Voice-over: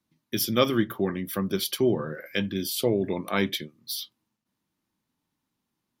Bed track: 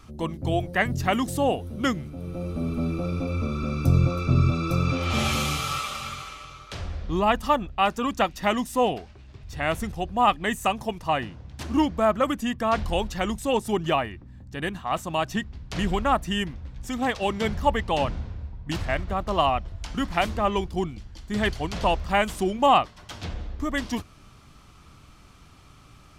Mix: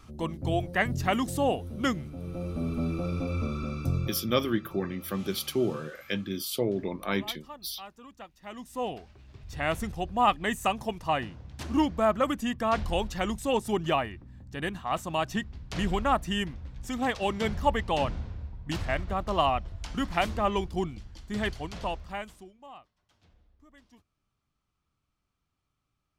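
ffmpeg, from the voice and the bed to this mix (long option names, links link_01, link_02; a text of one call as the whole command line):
ffmpeg -i stem1.wav -i stem2.wav -filter_complex "[0:a]adelay=3750,volume=-4dB[link_01];[1:a]volume=17dB,afade=type=out:start_time=3.42:duration=0.92:silence=0.1,afade=type=in:start_time=8.43:duration=1.06:silence=0.1,afade=type=out:start_time=21.02:duration=1.5:silence=0.0446684[link_02];[link_01][link_02]amix=inputs=2:normalize=0" out.wav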